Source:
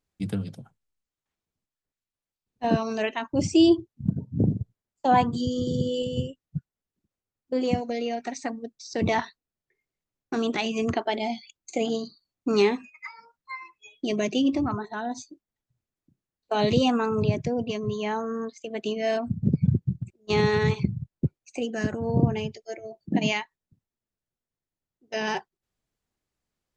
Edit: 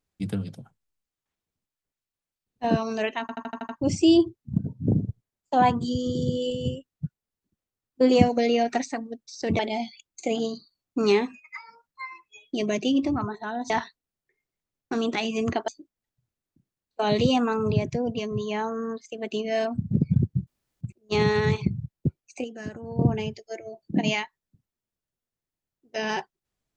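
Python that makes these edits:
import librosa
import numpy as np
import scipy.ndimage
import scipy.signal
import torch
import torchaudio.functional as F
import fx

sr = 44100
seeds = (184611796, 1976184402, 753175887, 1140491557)

y = fx.edit(x, sr, fx.stutter(start_s=3.21, slice_s=0.08, count=7),
    fx.clip_gain(start_s=7.53, length_s=0.83, db=7.0),
    fx.move(start_s=9.11, length_s=1.98, to_s=15.2),
    fx.insert_room_tone(at_s=19.99, length_s=0.34),
    fx.clip_gain(start_s=21.62, length_s=0.55, db=-8.5), tone=tone)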